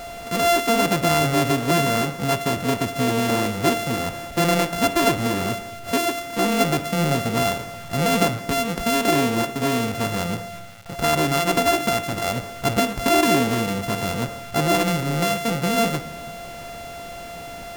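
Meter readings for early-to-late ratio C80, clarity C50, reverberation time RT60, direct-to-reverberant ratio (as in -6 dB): 16.5 dB, 14.5 dB, 1.2 s, 11.0 dB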